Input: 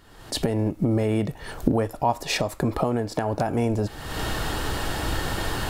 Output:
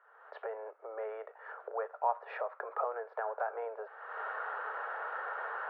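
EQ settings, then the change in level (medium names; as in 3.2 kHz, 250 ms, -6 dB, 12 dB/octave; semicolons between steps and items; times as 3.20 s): steep high-pass 440 Hz 72 dB/octave; four-pole ladder low-pass 1.6 kHz, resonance 60%; distance through air 140 m; 0.0 dB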